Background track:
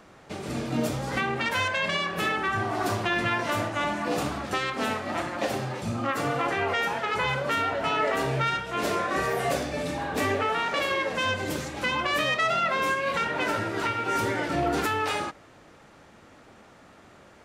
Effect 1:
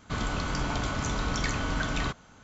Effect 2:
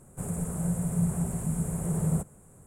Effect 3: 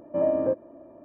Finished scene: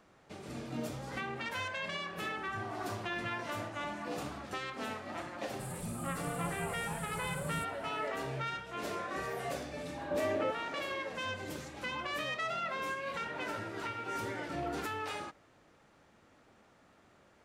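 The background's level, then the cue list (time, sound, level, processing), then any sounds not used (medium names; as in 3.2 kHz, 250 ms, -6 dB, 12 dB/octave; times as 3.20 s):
background track -11.5 dB
5.42 s: add 2 -14 dB + treble shelf 7.9 kHz +11.5 dB
9.97 s: add 3 -2.5 dB + peak limiter -24.5 dBFS
not used: 1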